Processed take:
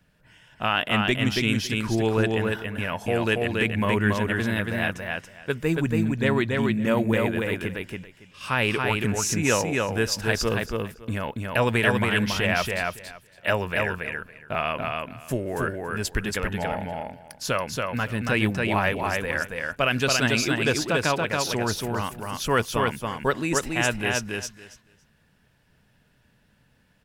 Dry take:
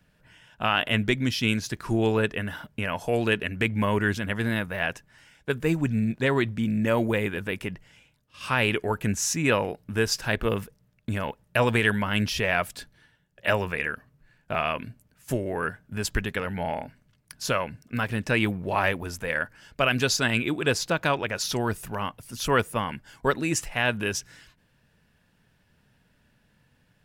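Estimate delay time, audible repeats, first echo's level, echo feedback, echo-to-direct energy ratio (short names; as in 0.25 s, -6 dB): 0.28 s, 3, -3.0 dB, 16%, -3.0 dB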